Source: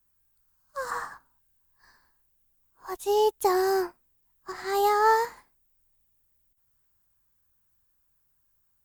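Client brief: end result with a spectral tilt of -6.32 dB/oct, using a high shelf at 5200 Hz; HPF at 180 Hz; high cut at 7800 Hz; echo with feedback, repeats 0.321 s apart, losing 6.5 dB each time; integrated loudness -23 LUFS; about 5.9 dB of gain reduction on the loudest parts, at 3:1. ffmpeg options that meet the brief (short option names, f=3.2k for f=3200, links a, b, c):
-af "highpass=180,lowpass=7.8k,highshelf=f=5.2k:g=-9,acompressor=threshold=-26dB:ratio=3,aecho=1:1:321|642|963|1284|1605|1926:0.473|0.222|0.105|0.0491|0.0231|0.0109,volume=8.5dB"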